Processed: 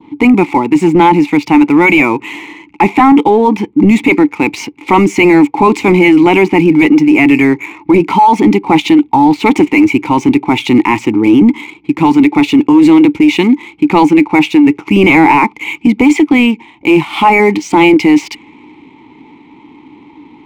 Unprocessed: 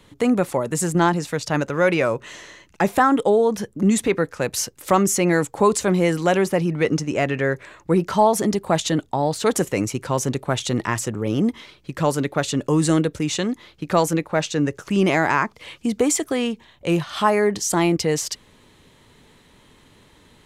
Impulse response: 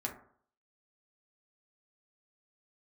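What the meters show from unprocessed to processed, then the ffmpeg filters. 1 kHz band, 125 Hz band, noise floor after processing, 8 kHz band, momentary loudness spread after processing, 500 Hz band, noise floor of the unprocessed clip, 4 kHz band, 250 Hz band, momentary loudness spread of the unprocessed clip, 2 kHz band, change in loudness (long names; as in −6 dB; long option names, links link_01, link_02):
+12.5 dB, +5.5 dB, −41 dBFS, can't be measured, 6 LU, +7.5 dB, −54 dBFS, +8.5 dB, +15.5 dB, 7 LU, +13.0 dB, +12.0 dB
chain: -filter_complex "[0:a]adynamicequalizer=threshold=0.01:dfrequency=2300:dqfactor=1.4:tfrequency=2300:tqfactor=1.4:attack=5:release=100:ratio=0.375:range=4:mode=boostabove:tftype=bell,asplit=3[link_01][link_02][link_03];[link_01]bandpass=frequency=300:width_type=q:width=8,volume=0dB[link_04];[link_02]bandpass=frequency=870:width_type=q:width=8,volume=-6dB[link_05];[link_03]bandpass=frequency=2240:width_type=q:width=8,volume=-9dB[link_06];[link_04][link_05][link_06]amix=inputs=3:normalize=0,apsyclip=28.5dB,adynamicsmooth=sensitivity=6:basefreq=3200,volume=-1.5dB"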